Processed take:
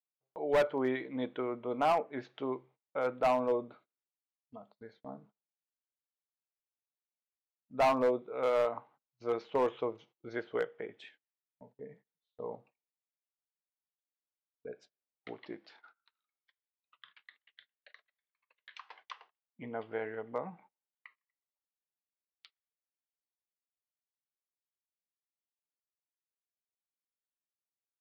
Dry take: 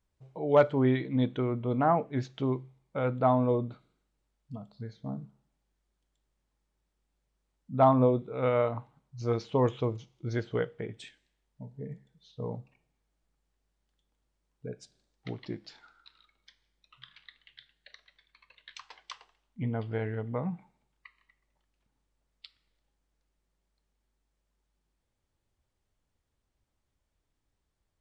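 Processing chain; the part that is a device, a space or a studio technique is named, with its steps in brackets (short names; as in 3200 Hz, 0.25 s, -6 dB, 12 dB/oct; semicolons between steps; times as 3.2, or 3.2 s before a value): walkie-talkie (BPF 420–2600 Hz; hard clip -22.5 dBFS, distortion -10 dB; gate -59 dBFS, range -24 dB)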